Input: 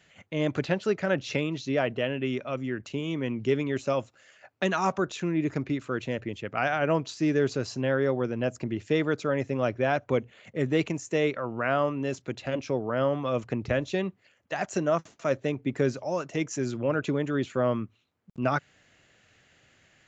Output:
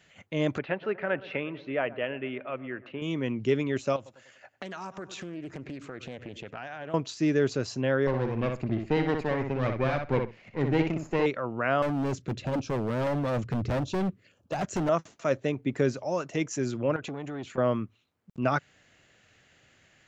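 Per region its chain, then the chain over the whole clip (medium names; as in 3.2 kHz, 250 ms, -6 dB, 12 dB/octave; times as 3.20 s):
0.58–3.02 s: low-pass 2.7 kHz 24 dB/octave + bass shelf 310 Hz -11.5 dB + feedback echo behind a low-pass 118 ms, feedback 64%, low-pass 1.6 kHz, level -18 dB
3.96–6.94 s: feedback delay 98 ms, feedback 50%, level -21 dB + compression 5:1, threshold -36 dBFS + loudspeaker Doppler distortion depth 0.32 ms
8.07–11.26 s: comb filter that takes the minimum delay 0.44 ms + distance through air 150 m + filtered feedback delay 62 ms, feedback 17%, low-pass 4.3 kHz, level -5 dB
11.82–14.89 s: bass shelf 410 Hz +11 dB + LFO notch square 1.6 Hz 820–2000 Hz + overload inside the chain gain 25.5 dB
16.96–17.58 s: compression 3:1, threshold -32 dBFS + transformer saturation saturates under 710 Hz
whole clip: none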